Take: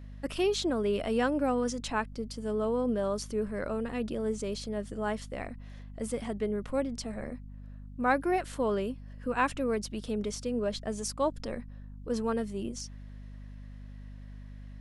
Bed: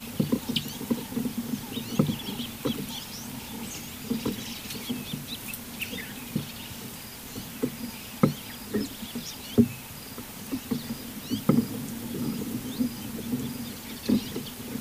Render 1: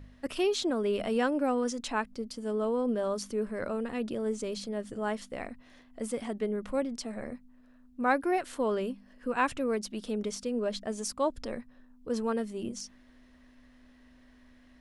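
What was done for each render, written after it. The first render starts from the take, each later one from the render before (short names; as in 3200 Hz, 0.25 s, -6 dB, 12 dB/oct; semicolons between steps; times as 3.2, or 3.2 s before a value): de-hum 50 Hz, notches 4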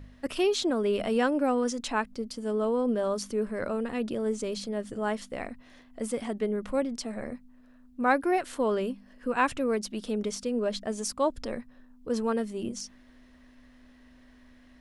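gain +2.5 dB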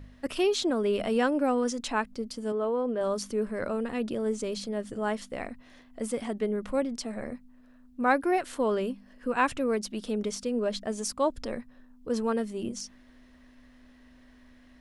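2.52–3.01 tone controls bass -9 dB, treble -12 dB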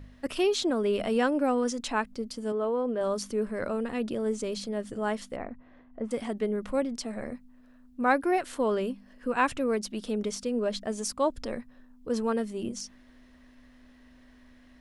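5.36–6.11 LPF 1400 Hz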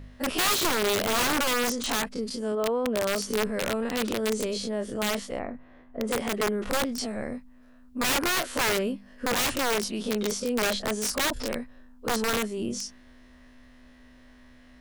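spectral dilation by 60 ms; wrapped overs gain 19.5 dB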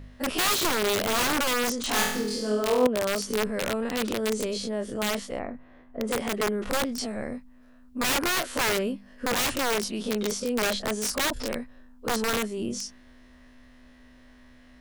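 1.89–2.87 flutter echo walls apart 4.1 m, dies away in 0.72 s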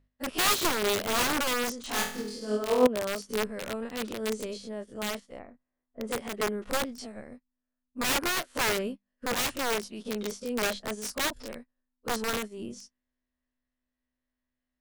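in parallel at +0.5 dB: limiter -23 dBFS, peak gain reduction 11.5 dB; on the sum: upward expander 2.5:1, over -42 dBFS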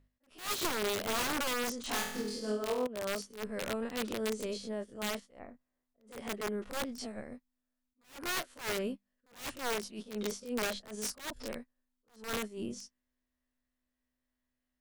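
compressor 12:1, threshold -30 dBFS, peak gain reduction 15 dB; attack slew limiter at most 160 dB/s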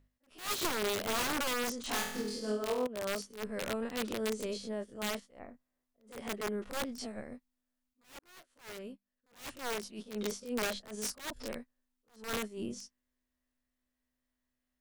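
8.19–10.22 fade in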